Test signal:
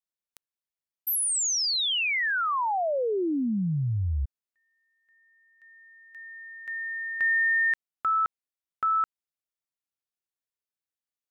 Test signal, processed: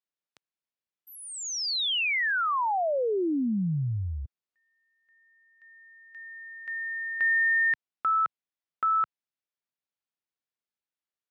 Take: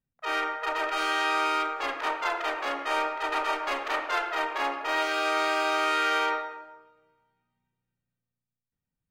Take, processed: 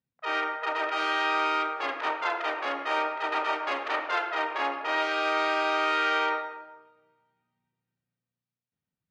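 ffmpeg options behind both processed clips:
-af "highpass=100,lowpass=4.6k"

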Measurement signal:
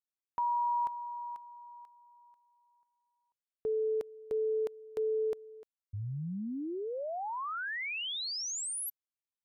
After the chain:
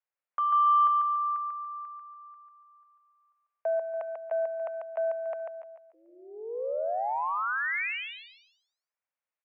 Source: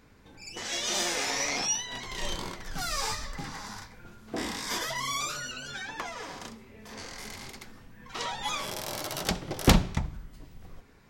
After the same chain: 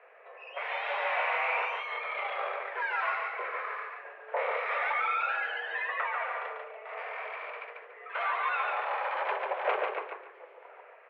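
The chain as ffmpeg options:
-filter_complex "[0:a]asoftclip=type=tanh:threshold=-18.5dB,aeval=exprs='0.119*(cos(1*acos(clip(val(0)/0.119,-1,1)))-cos(1*PI/2))+0.0237*(cos(5*acos(clip(val(0)/0.119,-1,1)))-cos(5*PI/2))':c=same,asplit=2[a][b];[b]aecho=0:1:143|286|429|572:0.631|0.189|0.0568|0.017[c];[a][c]amix=inputs=2:normalize=0,highpass=f=270:t=q:w=0.5412,highpass=f=270:t=q:w=1.307,lowpass=f=2.3k:t=q:w=0.5176,lowpass=f=2.3k:t=q:w=0.7071,lowpass=f=2.3k:t=q:w=1.932,afreqshift=220"

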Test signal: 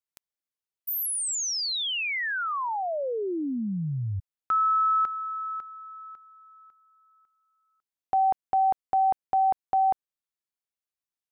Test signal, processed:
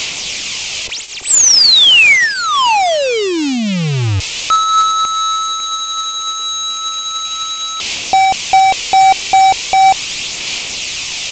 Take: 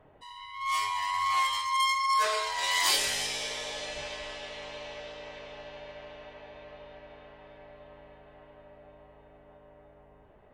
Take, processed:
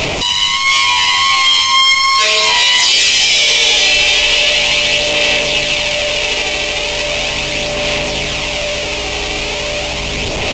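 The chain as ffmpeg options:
-af "aeval=exprs='val(0)+0.5*0.0335*sgn(val(0))':c=same,highshelf=f=2k:t=q:w=3:g=7.5,aphaser=in_gain=1:out_gain=1:delay=2.6:decay=0.32:speed=0.38:type=sinusoidal,aresample=16000,acrusher=bits=4:mode=log:mix=0:aa=0.000001,aresample=44100,alimiter=level_in=14dB:limit=-1dB:release=50:level=0:latency=1,volume=-1dB"

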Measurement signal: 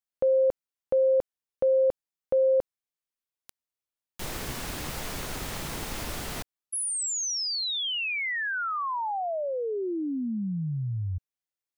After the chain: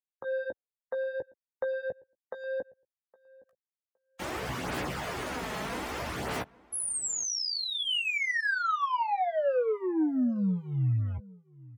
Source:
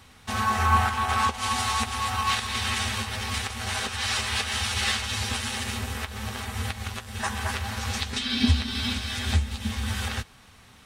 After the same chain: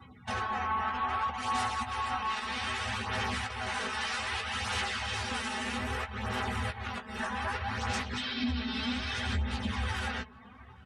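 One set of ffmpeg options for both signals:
-filter_complex "[0:a]highpass=87,acrossover=split=350|2600[a][b][c];[b]dynaudnorm=f=100:g=7:m=4dB[d];[a][d][c]amix=inputs=3:normalize=0,alimiter=limit=-18.5dB:level=0:latency=1:release=422,acompressor=threshold=-32dB:ratio=2:attack=0.12:release=59:knee=1:detection=peak,acrusher=bits=5:mode=log:mix=0:aa=0.000001,asoftclip=type=hard:threshold=-30dB,highshelf=f=2.9k:g=-3.5,flanger=delay=0:depth=4.7:regen=-16:speed=0.63:shape=sinusoidal,afftdn=nr=29:nf=-54,equalizer=f=3.9k:w=4.1:g=-2.5,asplit=2[e][f];[f]adelay=16,volume=-7.5dB[g];[e][g]amix=inputs=2:normalize=0,asplit=2[h][i];[i]adelay=814,lowpass=f=1.5k:p=1,volume=-22.5dB,asplit=2[j][k];[k]adelay=814,lowpass=f=1.5k:p=1,volume=0.18[l];[j][l]amix=inputs=2:normalize=0[m];[h][m]amix=inputs=2:normalize=0,volume=6dB"

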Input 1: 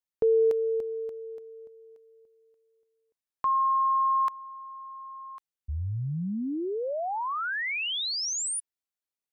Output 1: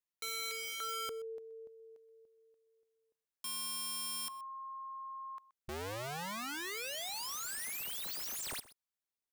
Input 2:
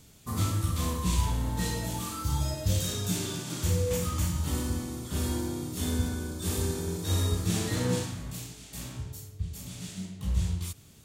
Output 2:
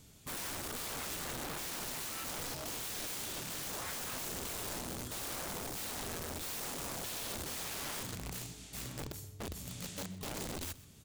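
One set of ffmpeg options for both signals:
-filter_complex "[0:a]alimiter=limit=-22dB:level=0:latency=1:release=424,aeval=exprs='(mod(42.2*val(0)+1,2)-1)/42.2':c=same,asplit=2[a][b];[b]aecho=0:1:126:0.112[c];[a][c]amix=inputs=2:normalize=0,volume=-3.5dB"

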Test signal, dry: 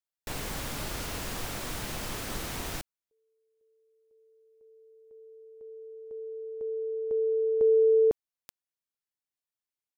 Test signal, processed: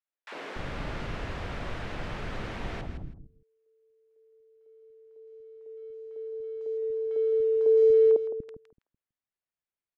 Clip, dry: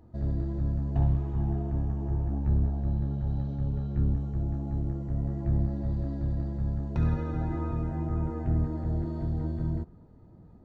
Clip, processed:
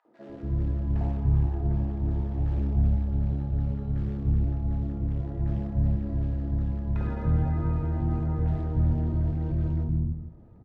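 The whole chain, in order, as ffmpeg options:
-filter_complex "[0:a]asplit=2[a][b];[b]aecho=0:1:162|324:0.335|0.0569[c];[a][c]amix=inputs=2:normalize=0,acrusher=bits=8:mode=log:mix=0:aa=0.000001,lowpass=2.2k,acrossover=split=280|950[d][e][f];[e]adelay=50[g];[d]adelay=290[h];[h][g][f]amix=inputs=3:normalize=0,volume=2.5dB"

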